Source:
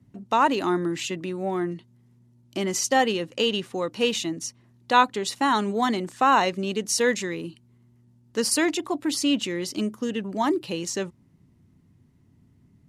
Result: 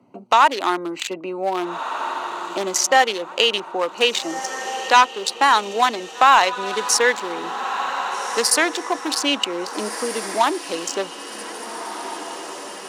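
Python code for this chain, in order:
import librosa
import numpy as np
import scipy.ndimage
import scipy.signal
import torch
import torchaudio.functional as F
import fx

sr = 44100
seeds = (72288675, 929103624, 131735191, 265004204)

y = fx.wiener(x, sr, points=25)
y = scipy.signal.sosfilt(scipy.signal.butter(2, 750.0, 'highpass', fs=sr, output='sos'), y)
y = fx.echo_diffused(y, sr, ms=1652, feedback_pct=44, wet_db=-15.5)
y = fx.fold_sine(y, sr, drive_db=6, ceiling_db=-4.5)
y = fx.band_squash(y, sr, depth_pct=40)
y = F.gain(torch.from_numpy(y), 2.5).numpy()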